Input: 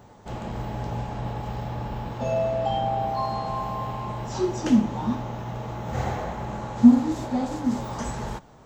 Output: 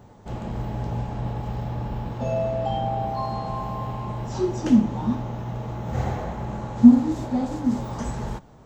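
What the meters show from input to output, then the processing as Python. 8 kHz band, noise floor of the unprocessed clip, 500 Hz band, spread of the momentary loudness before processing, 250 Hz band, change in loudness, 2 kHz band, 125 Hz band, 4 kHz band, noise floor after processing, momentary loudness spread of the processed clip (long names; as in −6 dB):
can't be measured, −50 dBFS, −0.5 dB, 12 LU, +2.0 dB, +1.5 dB, −2.5 dB, +3.0 dB, −3.0 dB, −48 dBFS, 12 LU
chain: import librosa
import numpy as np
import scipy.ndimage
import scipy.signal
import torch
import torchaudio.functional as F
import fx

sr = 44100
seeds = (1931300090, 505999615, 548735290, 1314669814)

y = fx.low_shelf(x, sr, hz=440.0, db=6.5)
y = F.gain(torch.from_numpy(y), -3.0).numpy()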